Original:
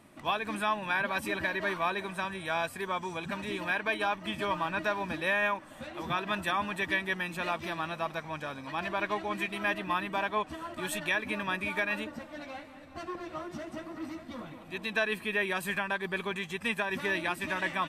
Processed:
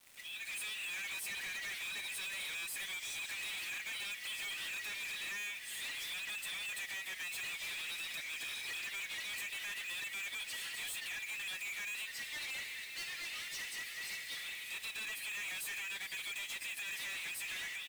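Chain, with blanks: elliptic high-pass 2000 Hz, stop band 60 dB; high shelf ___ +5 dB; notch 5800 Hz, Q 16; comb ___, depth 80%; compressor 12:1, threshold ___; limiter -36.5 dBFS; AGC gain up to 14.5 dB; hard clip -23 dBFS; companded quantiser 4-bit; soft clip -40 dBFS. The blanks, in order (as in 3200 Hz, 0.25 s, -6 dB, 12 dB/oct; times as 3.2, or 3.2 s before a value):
3700 Hz, 7.2 ms, -40 dBFS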